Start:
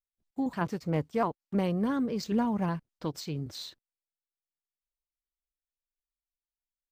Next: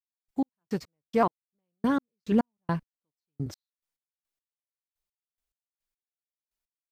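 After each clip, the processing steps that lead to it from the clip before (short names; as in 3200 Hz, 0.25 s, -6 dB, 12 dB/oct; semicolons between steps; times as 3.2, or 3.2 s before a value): step gate "..x..x..x.." 106 bpm -60 dB; gain +5 dB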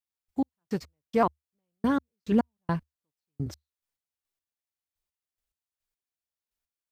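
bell 74 Hz +11 dB 0.45 oct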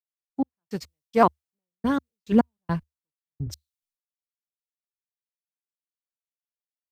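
three-band expander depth 100%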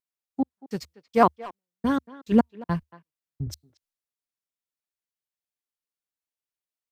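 wow and flutter 25 cents; speakerphone echo 0.23 s, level -18 dB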